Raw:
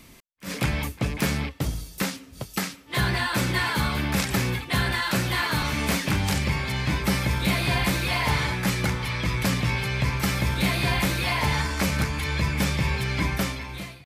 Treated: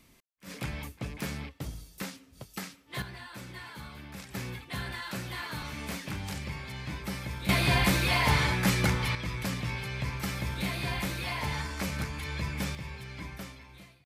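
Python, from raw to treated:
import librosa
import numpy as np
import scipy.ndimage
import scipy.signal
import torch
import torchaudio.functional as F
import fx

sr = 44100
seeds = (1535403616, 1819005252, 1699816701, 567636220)

y = fx.gain(x, sr, db=fx.steps((0.0, -11.0), (3.02, -19.5), (4.35, -12.5), (7.49, -1.0), (9.15, -9.0), (12.75, -16.0)))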